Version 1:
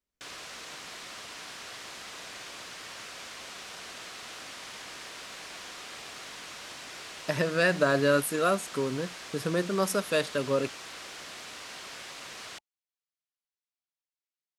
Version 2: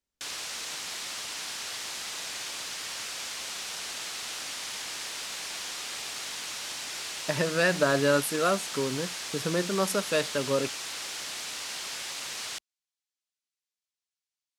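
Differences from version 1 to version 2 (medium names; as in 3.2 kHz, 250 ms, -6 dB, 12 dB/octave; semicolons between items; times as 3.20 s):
background: add treble shelf 2.8 kHz +11.5 dB; master: remove band-stop 860 Hz, Q 13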